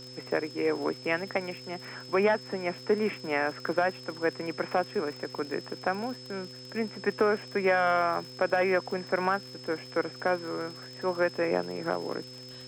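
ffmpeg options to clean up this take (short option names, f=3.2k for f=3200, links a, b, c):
-af "adeclick=t=4,bandreject=f=127.2:t=h:w=4,bandreject=f=254.4:t=h:w=4,bandreject=f=381.6:t=h:w=4,bandreject=f=508.8:t=h:w=4,bandreject=f=5.2k:w=30,afwtdn=0.002"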